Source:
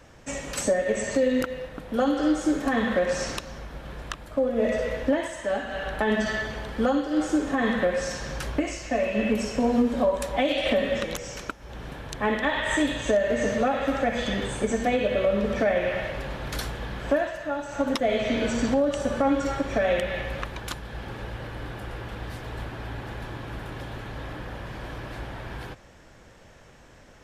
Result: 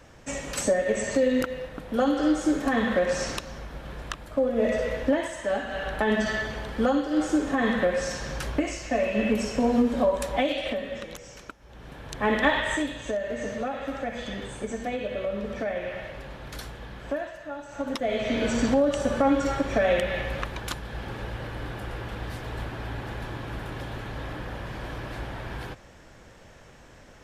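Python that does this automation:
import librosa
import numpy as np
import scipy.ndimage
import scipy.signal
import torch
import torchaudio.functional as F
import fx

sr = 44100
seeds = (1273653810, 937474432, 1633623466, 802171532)

y = fx.gain(x, sr, db=fx.line((10.38, 0.0), (10.82, -8.5), (11.72, -8.5), (12.47, 4.0), (12.92, -7.0), (17.67, -7.0), (18.56, 1.0)))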